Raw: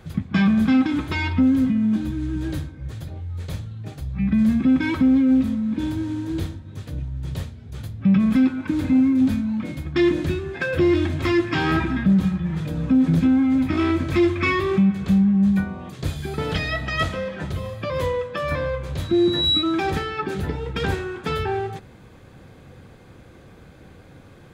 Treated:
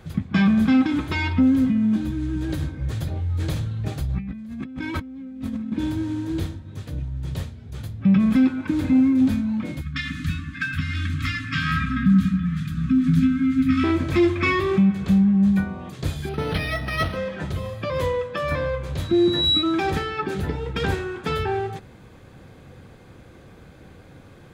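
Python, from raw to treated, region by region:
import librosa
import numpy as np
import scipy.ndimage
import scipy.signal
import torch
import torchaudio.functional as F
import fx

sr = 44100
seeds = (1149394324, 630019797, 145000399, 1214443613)

y = fx.chain(x, sr, fx.echo_single(ms=987, db=-12.0),
    fx.over_compress(threshold_db=-29.0, ratio=-1.0), at=(2.4, 5.72))
y = fx.chain(y, sr, fx.brickwall_bandstop(low_hz=280.0, high_hz=1100.0),
    fx.echo_wet_bandpass(ms=95, feedback_pct=76, hz=510.0, wet_db=-3.5), at=(9.81, 13.84))
y = fx.chain(y, sr, fx.peak_eq(hz=4500.0, db=5.0, octaves=0.58),
    fx.resample_linear(factor=6), at=(16.29, 17.17))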